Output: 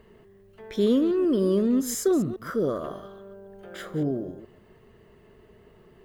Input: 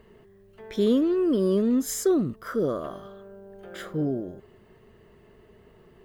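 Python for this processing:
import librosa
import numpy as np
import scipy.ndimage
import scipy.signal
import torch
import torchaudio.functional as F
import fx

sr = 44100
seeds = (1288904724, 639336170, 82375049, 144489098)

y = fx.reverse_delay(x, sr, ms=139, wet_db=-14)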